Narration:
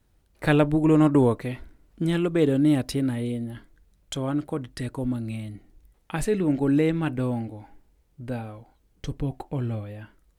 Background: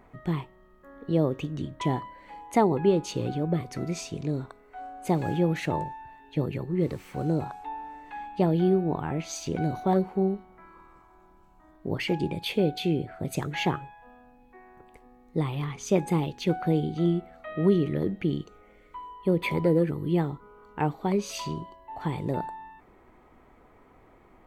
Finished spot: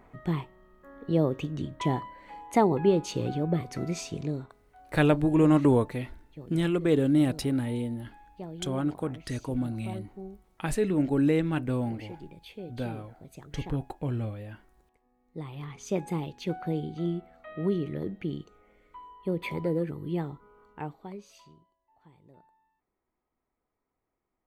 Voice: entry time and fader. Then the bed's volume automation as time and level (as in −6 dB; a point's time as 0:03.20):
4.50 s, −2.5 dB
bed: 0:04.22 −0.5 dB
0:04.93 −17 dB
0:15.04 −17 dB
0:15.77 −6 dB
0:20.62 −6 dB
0:21.75 −28 dB